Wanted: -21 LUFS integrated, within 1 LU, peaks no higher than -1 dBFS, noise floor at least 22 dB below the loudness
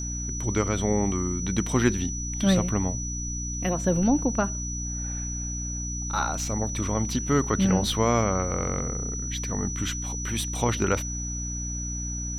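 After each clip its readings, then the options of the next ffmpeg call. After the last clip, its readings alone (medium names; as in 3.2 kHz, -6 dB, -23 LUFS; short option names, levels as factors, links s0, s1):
hum 60 Hz; highest harmonic 300 Hz; hum level -31 dBFS; steady tone 5.9 kHz; tone level -33 dBFS; loudness -26.5 LUFS; peak level -8.0 dBFS; loudness target -21.0 LUFS
-> -af "bandreject=f=60:t=h:w=6,bandreject=f=120:t=h:w=6,bandreject=f=180:t=h:w=6,bandreject=f=240:t=h:w=6,bandreject=f=300:t=h:w=6"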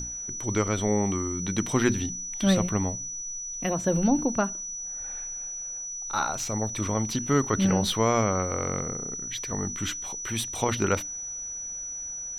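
hum not found; steady tone 5.9 kHz; tone level -33 dBFS
-> -af "bandreject=f=5900:w=30"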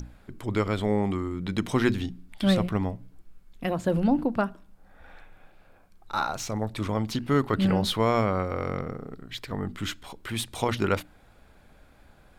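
steady tone not found; loudness -28.0 LUFS; peak level -10.0 dBFS; loudness target -21.0 LUFS
-> -af "volume=2.24"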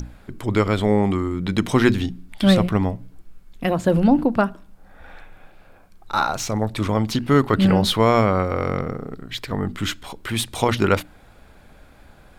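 loudness -21.0 LUFS; peak level -3.0 dBFS; noise floor -50 dBFS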